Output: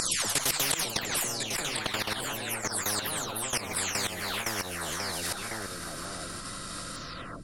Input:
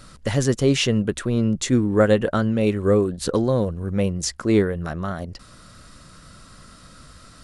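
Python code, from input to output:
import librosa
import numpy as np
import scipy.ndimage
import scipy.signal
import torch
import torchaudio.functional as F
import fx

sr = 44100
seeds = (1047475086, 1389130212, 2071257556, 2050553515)

p1 = fx.spec_delay(x, sr, highs='early', ms=468)
p2 = fx.high_shelf(p1, sr, hz=8900.0, db=6.5)
p3 = fx.rider(p2, sr, range_db=5, speed_s=2.0)
p4 = fx.echo_pitch(p3, sr, ms=198, semitones=3, count=3, db_per_echo=-6.0)
p5 = fx.level_steps(p4, sr, step_db=18)
p6 = p5 + fx.echo_single(p5, sr, ms=1049, db=-19.5, dry=0)
p7 = fx.spectral_comp(p6, sr, ratio=10.0)
y = F.gain(torch.from_numpy(p7), -4.0).numpy()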